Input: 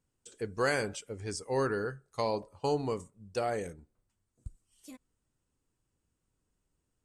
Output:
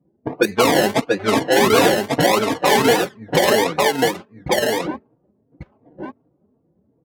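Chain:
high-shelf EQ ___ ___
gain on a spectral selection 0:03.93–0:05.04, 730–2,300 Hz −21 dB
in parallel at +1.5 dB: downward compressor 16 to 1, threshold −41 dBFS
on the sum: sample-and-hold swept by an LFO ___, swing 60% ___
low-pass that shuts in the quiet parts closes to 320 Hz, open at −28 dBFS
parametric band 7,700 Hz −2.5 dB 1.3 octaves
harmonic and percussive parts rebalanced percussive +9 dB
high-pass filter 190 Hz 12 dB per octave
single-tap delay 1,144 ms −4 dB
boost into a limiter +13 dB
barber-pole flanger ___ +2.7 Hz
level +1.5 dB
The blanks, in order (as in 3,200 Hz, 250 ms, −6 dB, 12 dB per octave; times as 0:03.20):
2,900 Hz, +6 dB, 29×, 1.5 Hz, 3.7 ms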